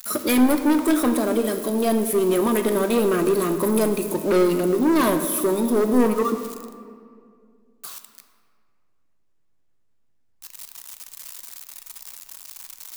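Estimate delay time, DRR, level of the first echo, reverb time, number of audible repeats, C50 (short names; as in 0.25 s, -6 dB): none, 7.0 dB, none, 2.2 s, none, 9.0 dB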